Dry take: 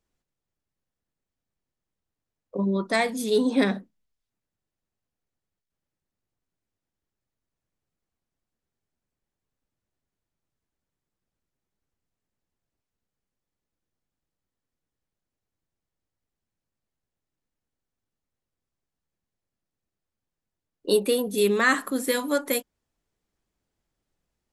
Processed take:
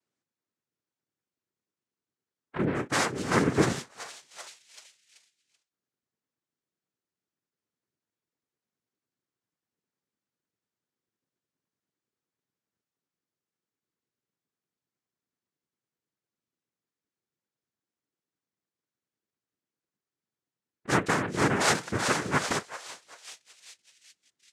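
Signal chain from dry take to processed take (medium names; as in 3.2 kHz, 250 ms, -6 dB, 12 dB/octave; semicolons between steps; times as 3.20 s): repeats whose band climbs or falls 383 ms, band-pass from 1.4 kHz, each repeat 0.7 oct, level -5 dB; noise-vocoded speech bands 3; trim -3 dB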